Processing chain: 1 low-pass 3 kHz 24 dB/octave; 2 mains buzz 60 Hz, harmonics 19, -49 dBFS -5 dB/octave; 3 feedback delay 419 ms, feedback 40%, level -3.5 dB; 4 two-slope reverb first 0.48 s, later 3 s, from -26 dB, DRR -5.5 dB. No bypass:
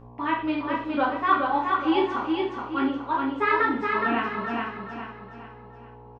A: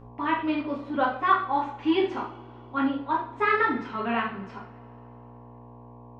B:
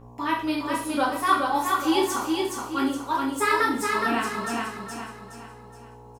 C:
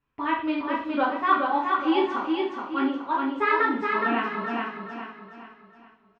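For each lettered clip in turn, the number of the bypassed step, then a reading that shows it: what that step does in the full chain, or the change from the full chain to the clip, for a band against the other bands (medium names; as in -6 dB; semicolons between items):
3, echo-to-direct 8.0 dB to 5.5 dB; 1, 4 kHz band +5.5 dB; 2, momentary loudness spread change -2 LU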